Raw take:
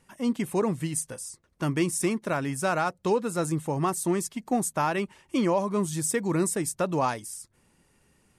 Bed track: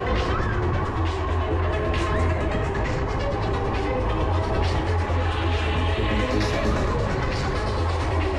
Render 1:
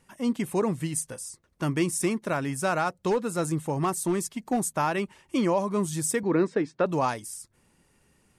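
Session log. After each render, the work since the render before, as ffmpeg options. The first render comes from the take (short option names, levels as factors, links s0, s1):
-filter_complex "[0:a]asettb=1/sr,asplit=3[s0][s1][s2];[s0]atrim=end=3.104[s3];[s1]atrim=start=3.1:end=4.71,asetpts=PTS-STARTPTS,afade=t=in:d=0.004:c=qsin,afade=t=out:st=1.606:d=0.004:c=qsin,asoftclip=type=hard:threshold=0.112[s4];[s2]atrim=start=4.706[s5];[s3][s4]acrossfade=d=0.004:c1=hsin:c2=qsin[s6];[s6][s5]acrossfade=d=0.004:c1=qsin:c2=hsin,asettb=1/sr,asplit=3[s7][s8][s9];[s7]atrim=end=6.234[s10];[s8]atrim=start=6.23:end=6.86,asetpts=PTS-STARTPTS,afade=t=in:d=0.004:c=qsin,afade=t=out:st=0.626:d=0.004:c=qsin,highpass=170,equalizer=f=280:t=q:w=4:g=6,equalizer=f=460:t=q:w=4:g=8,equalizer=f=1600:t=q:w=4:g=4,equalizer=f=3000:t=q:w=4:g=-3,lowpass=f=4000:w=0.5412,lowpass=f=4000:w=1.3066[s11];[s9]atrim=start=6.856[s12];[s10][s11]acrossfade=d=0.004:c1=hsin:c2=qsin[s13];[s13][s12]acrossfade=d=0.004:c1=qsin:c2=hsin"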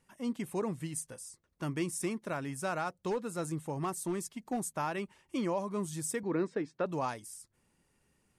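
-af "volume=0.376"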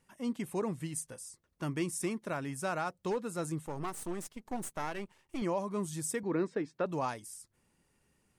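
-filter_complex "[0:a]asettb=1/sr,asplit=3[s0][s1][s2];[s0]atrim=end=3.664[s3];[s1]atrim=start=3.66:end=5.42,asetpts=PTS-STARTPTS,afade=t=in:d=0.004:c=qsin,afade=t=out:st=1.756:d=0.004:c=qsin,aeval=exprs='if(lt(val(0),0),0.251*val(0),val(0))':c=same[s4];[s2]atrim=start=5.416[s5];[s3][s4]acrossfade=d=0.004:c1=hsin:c2=qsin[s6];[s6][s5]acrossfade=d=0.004:c1=qsin:c2=hsin"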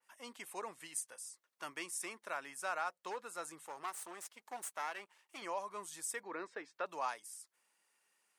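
-af "highpass=870,adynamicequalizer=threshold=0.002:dfrequency=2500:dqfactor=0.7:tfrequency=2500:tqfactor=0.7:attack=5:release=100:ratio=0.375:range=2.5:mode=cutabove:tftype=highshelf"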